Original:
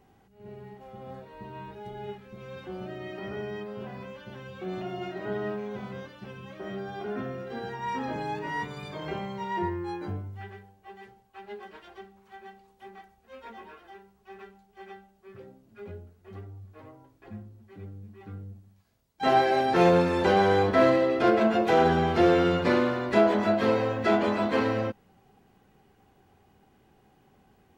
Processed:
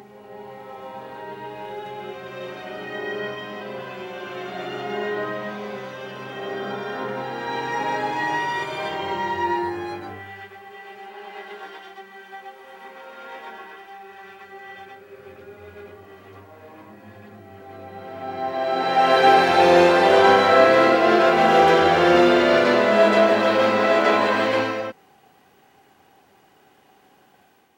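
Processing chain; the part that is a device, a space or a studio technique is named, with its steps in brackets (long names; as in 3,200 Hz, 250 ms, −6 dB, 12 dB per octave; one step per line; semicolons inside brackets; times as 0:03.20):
ghost voice (reversed playback; convolution reverb RT60 3.0 s, pre-delay 77 ms, DRR −4 dB; reversed playback; high-pass filter 770 Hz 6 dB per octave)
level +6 dB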